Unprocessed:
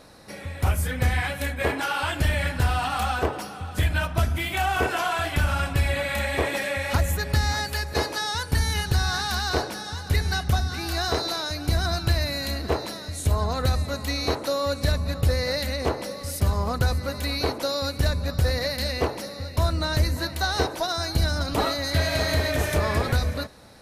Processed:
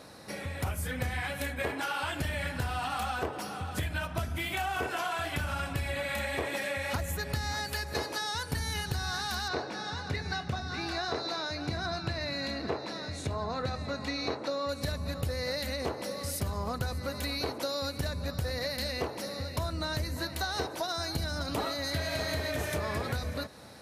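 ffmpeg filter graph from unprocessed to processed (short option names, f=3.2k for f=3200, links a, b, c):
-filter_complex "[0:a]asettb=1/sr,asplit=3[a][b][c];[a]atrim=end=9.484[d];[b]atrim=start=9.48:end=14.69,asetpts=PTS-STARTPTS,afade=t=in:d=0.004:c=qsin,afade=t=out:st=5.206:d=0.004:c=qsin,highpass=100,lowpass=4.5k,bandreject=f=3.1k:w=9.4,asplit=2[e][f];[f]adelay=22,volume=-12dB[g];[e][g]amix=inputs=2:normalize=0,atrim=end_sample=229761[h];[c]atrim=start=14.686[i];[d][h]acrossfade=d=0.004:c1=hsin:c2=qsin[j];[j][i]acrossfade=d=0.004:c1=qsin:c2=hsin,highpass=82,acompressor=threshold=-32dB:ratio=3"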